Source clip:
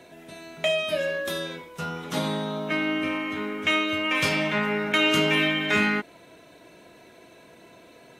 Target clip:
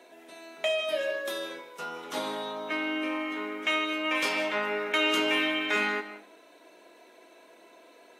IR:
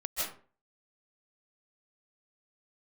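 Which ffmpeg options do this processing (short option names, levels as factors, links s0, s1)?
-filter_complex "[0:a]highpass=f=280:w=0.5412,highpass=f=280:w=1.3066,equalizer=f=920:t=o:w=0.73:g=3,asplit=2[s0][s1];[1:a]atrim=start_sample=2205[s2];[s1][s2]afir=irnorm=-1:irlink=0,volume=0.168[s3];[s0][s3]amix=inputs=2:normalize=0,volume=0.531"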